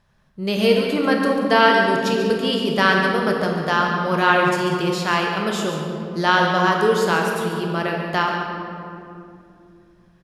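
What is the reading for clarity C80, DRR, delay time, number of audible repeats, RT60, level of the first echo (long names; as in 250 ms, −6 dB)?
2.5 dB, 0.0 dB, 142 ms, 1, 2.6 s, −10.0 dB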